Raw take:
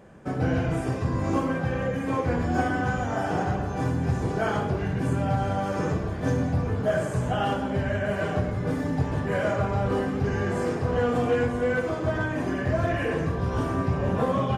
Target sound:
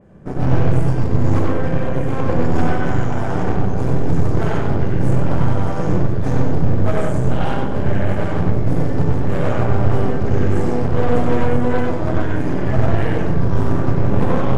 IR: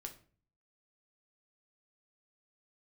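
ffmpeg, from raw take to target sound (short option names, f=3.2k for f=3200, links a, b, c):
-filter_complex "[0:a]lowshelf=f=450:g=11.5,aeval=exprs='0.668*(cos(1*acos(clip(val(0)/0.668,-1,1)))-cos(1*PI/2))+0.0335*(cos(3*acos(clip(val(0)/0.668,-1,1)))-cos(3*PI/2))+0.133*(cos(6*acos(clip(val(0)/0.668,-1,1)))-cos(6*PI/2))':c=same,asoftclip=type=hard:threshold=-7dB,asplit=2[a][b];[1:a]atrim=start_sample=2205,lowpass=4.3k,adelay=94[c];[b][c]afir=irnorm=-1:irlink=0,volume=5dB[d];[a][d]amix=inputs=2:normalize=0,adynamicequalizer=threshold=0.0112:dfrequency=3500:dqfactor=0.7:tfrequency=3500:tqfactor=0.7:attack=5:release=100:ratio=0.375:range=2.5:mode=boostabove:tftype=highshelf,volume=-5dB"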